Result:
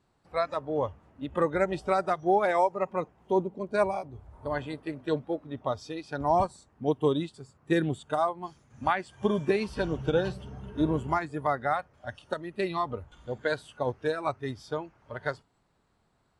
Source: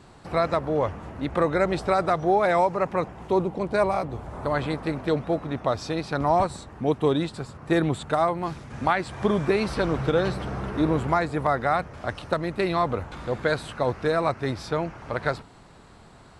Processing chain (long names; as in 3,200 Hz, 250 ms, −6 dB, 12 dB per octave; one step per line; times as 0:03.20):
noise reduction from a noise print of the clip's start 12 dB
expander for the loud parts 1.5 to 1, over −32 dBFS
level −2 dB